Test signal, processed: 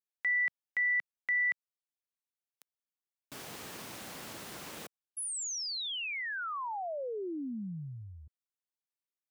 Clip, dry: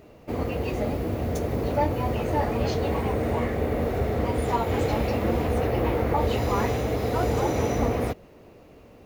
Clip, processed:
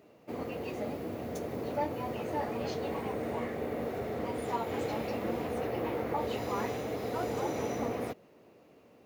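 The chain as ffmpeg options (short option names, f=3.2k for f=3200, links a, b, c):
-af "highpass=160,volume=-8dB"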